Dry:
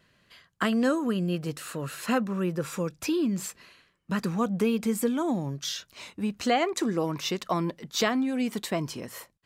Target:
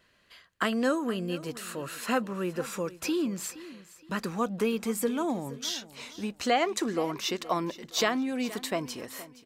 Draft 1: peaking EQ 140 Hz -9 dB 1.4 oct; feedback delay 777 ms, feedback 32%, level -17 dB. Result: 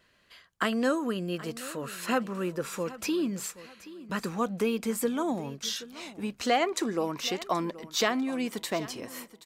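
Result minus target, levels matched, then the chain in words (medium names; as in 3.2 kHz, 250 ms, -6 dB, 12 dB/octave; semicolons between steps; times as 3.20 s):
echo 308 ms late
peaking EQ 140 Hz -9 dB 1.4 oct; feedback delay 469 ms, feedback 32%, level -17 dB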